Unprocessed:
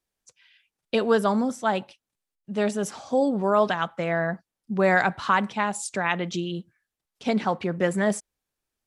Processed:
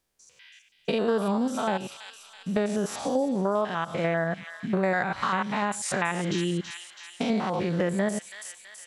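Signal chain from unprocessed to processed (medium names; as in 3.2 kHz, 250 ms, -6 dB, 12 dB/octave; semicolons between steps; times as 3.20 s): spectrogram pixelated in time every 100 ms; on a send: feedback echo behind a high-pass 328 ms, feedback 55%, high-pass 2.9 kHz, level -8 dB; on the sum: compression 4:1, threshold -32 dBFS, peak gain reduction 13.5 dB; trim +8 dB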